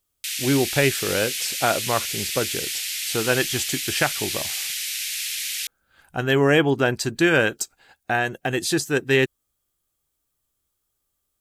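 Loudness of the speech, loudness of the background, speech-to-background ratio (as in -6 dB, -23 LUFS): -23.0 LUFS, -26.0 LUFS, 3.0 dB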